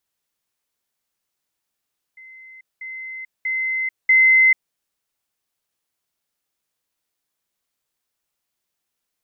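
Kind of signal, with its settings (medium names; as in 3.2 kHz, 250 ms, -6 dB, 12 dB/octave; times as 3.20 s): level ladder 2.06 kHz -40 dBFS, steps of 10 dB, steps 4, 0.44 s 0.20 s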